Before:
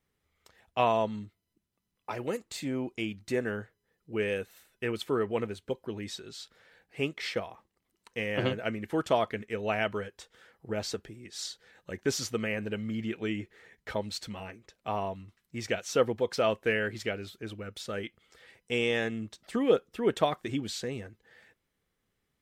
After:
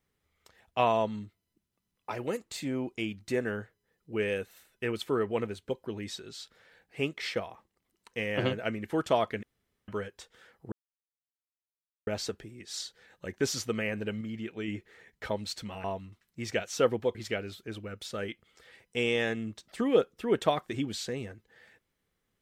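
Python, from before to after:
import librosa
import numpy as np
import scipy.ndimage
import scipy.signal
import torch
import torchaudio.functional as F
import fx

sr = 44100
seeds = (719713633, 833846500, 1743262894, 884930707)

y = fx.edit(x, sr, fx.room_tone_fill(start_s=9.43, length_s=0.45),
    fx.insert_silence(at_s=10.72, length_s=1.35),
    fx.clip_gain(start_s=12.86, length_s=0.47, db=-4.0),
    fx.cut(start_s=14.49, length_s=0.51),
    fx.cut(start_s=16.31, length_s=0.59), tone=tone)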